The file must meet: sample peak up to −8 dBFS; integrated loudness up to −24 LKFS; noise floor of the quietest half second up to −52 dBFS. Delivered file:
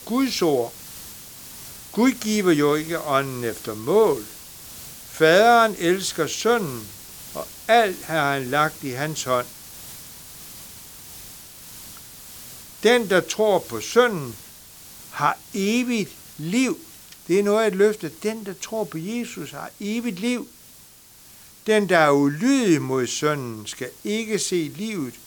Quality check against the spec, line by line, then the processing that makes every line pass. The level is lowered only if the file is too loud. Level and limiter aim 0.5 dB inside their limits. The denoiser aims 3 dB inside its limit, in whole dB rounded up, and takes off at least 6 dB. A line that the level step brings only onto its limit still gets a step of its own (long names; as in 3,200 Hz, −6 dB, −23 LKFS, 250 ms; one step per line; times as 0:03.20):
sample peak −4.0 dBFS: out of spec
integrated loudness −21.5 LKFS: out of spec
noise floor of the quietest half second −48 dBFS: out of spec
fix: broadband denoise 6 dB, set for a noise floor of −48 dBFS
level −3 dB
brickwall limiter −8.5 dBFS